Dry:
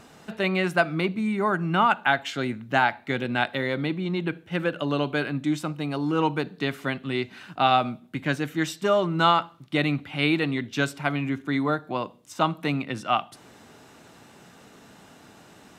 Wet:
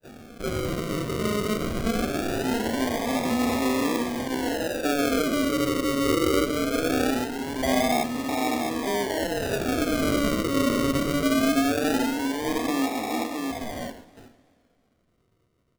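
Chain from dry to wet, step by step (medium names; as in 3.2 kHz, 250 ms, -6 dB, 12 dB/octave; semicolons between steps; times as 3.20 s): spectrogram pixelated in time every 400 ms; bass shelf 400 Hz -2.5 dB; delay 659 ms -5 dB; in parallel at -5 dB: hard clipper -28 dBFS, distortion -10 dB; on the sum: gate with hold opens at -35 dBFS; touch-sensitive phaser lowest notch 300 Hz, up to 1.3 kHz, full sweep at -32 dBFS; brick-wall FIR band-pass 220–2800 Hz; comb 4.3 ms, depth 96%; phase dispersion lows, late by 53 ms, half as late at 580 Hz; decimation with a swept rate 41×, swing 60% 0.21 Hz; on a send at -14 dB: reverberation RT60 0.60 s, pre-delay 8 ms; on the sum: modulated delay 129 ms, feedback 68%, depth 151 cents, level -21.5 dB; trim +2.5 dB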